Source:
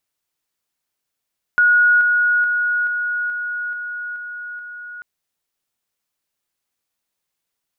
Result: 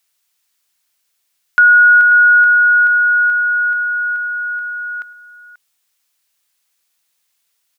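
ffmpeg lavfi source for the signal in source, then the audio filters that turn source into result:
-f lavfi -i "aevalsrc='pow(10,(-10-3*floor(t/0.43))/20)*sin(2*PI*1450*t)':d=3.44:s=44100"
-filter_complex "[0:a]tiltshelf=f=920:g=-7.5,asplit=2[a][b];[b]alimiter=limit=-15dB:level=0:latency=1,volume=-1dB[c];[a][c]amix=inputs=2:normalize=0,asplit=2[d][e];[e]adelay=536.4,volume=-13dB,highshelf=f=4k:g=-12.1[f];[d][f]amix=inputs=2:normalize=0"

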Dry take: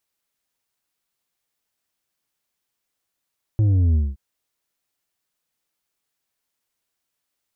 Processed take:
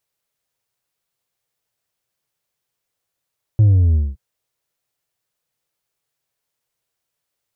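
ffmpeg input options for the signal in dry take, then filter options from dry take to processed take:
-f lavfi -i "aevalsrc='0.178*clip((0.57-t)/0.21,0,1)*tanh(2*sin(2*PI*110*0.57/log(65/110)*(exp(log(65/110)*t/0.57)-1)))/tanh(2)':d=0.57:s=44100"
-af "equalizer=f=125:t=o:w=1:g=8,equalizer=f=250:t=o:w=1:g=-5,equalizer=f=500:t=o:w=1:g=5"

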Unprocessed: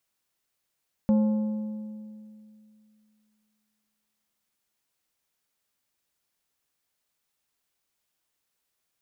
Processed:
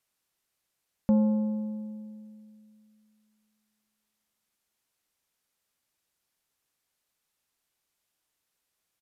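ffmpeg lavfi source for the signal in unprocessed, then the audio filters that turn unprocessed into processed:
-f lavfi -i "aevalsrc='0.141*pow(10,-3*t/2.58)*sin(2*PI*214*t)+0.0398*pow(10,-3*t/1.96)*sin(2*PI*535*t)+0.0112*pow(10,-3*t/1.702)*sin(2*PI*856*t)+0.00316*pow(10,-3*t/1.592)*sin(2*PI*1070*t)+0.000891*pow(10,-3*t/1.471)*sin(2*PI*1391*t)':d=5.28:s=44100"
-af "aresample=32000,aresample=44100"

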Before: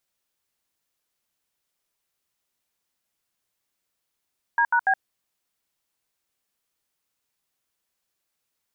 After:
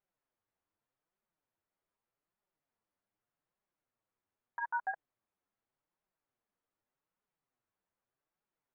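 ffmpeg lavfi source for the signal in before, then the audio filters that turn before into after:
-f lavfi -i "aevalsrc='0.106*clip(min(mod(t,0.144),0.07-mod(t,0.144))/0.002,0,1)*(eq(floor(t/0.144),0)*(sin(2*PI*941*mod(t,0.144))+sin(2*PI*1633*mod(t,0.144)))+eq(floor(t/0.144),1)*(sin(2*PI*941*mod(t,0.144))+sin(2*PI*1477*mod(t,0.144)))+eq(floor(t/0.144),2)*(sin(2*PI*770*mod(t,0.144))+sin(2*PI*1633*mod(t,0.144))))':d=0.432:s=44100"
-af "alimiter=limit=-23dB:level=0:latency=1:release=12,lowpass=1.4k,flanger=delay=4.7:depth=6.4:regen=3:speed=0.83:shape=triangular"

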